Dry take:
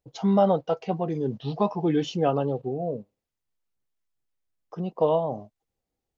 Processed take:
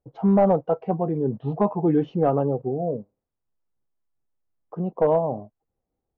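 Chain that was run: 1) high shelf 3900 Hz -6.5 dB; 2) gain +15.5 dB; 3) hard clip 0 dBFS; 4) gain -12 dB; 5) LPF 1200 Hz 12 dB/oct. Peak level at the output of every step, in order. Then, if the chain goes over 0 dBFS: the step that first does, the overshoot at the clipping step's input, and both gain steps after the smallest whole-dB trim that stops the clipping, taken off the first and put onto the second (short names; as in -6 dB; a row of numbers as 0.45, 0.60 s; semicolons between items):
-10.0, +5.5, 0.0, -12.0, -11.5 dBFS; step 2, 5.5 dB; step 2 +9.5 dB, step 4 -6 dB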